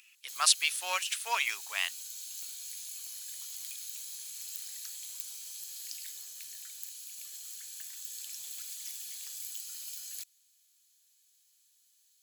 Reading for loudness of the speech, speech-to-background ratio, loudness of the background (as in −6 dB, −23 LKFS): −29.0 LKFS, 11.5 dB, −40.5 LKFS